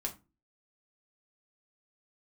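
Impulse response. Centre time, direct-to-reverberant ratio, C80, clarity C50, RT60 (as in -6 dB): 11 ms, 0.0 dB, 21.0 dB, 14.0 dB, 0.25 s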